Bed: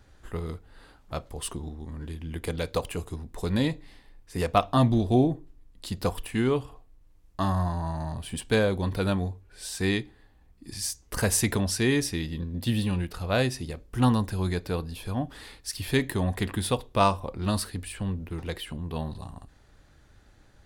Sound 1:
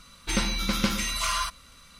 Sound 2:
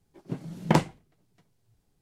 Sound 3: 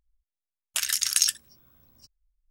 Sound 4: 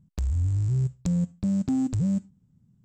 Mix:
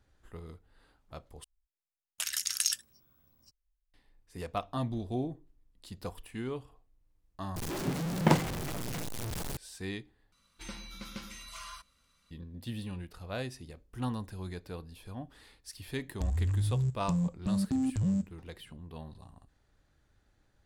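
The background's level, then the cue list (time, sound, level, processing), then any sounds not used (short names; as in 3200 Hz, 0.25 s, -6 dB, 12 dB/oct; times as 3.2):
bed -12.5 dB
1.44 replace with 3 -7.5 dB
7.56 replace with 2 -3.5 dB + zero-crossing step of -26.5 dBFS
10.32 replace with 1 -18 dB
16.03 add 4 -5 dB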